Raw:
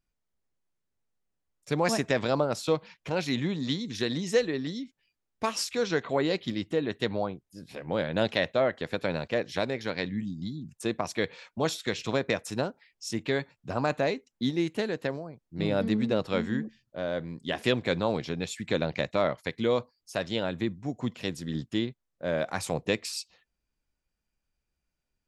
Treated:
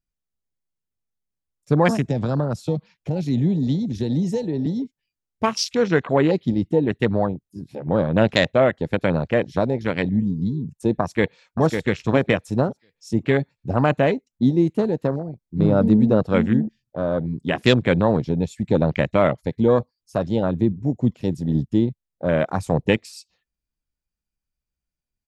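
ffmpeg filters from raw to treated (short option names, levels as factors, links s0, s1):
-filter_complex "[0:a]asettb=1/sr,asplit=3[s0][s1][s2];[s0]atrim=end=1.904[s3];[s1]atrim=start=1.9:end=4.66,asetpts=PTS-STARTPTS,afade=t=in:d=0.004:c=qsin,afade=t=out:st=2.756:d=0.004:c=qsin,acrossover=split=210|3000[s4][s5][s6];[s5]acompressor=threshold=0.0178:ratio=2.5:attack=3.2:release=140:knee=2.83:detection=peak[s7];[s4][s7][s6]amix=inputs=3:normalize=0[s8];[s2]atrim=start=4.656[s9];[s3][s8]acrossfade=d=0.004:c1=hsin:c2=qsin[s10];[s10][s9]acrossfade=d=0.004:c1=qsin:c2=hsin,asplit=2[s11][s12];[s12]afade=t=in:st=11.02:d=0.01,afade=t=out:st=11.62:d=0.01,aecho=0:1:550|1100|1650|2200:0.530884|0.159265|0.0477796|0.0143339[s13];[s11][s13]amix=inputs=2:normalize=0,afwtdn=0.02,bass=f=250:g=6,treble=f=4000:g=4,volume=2.51"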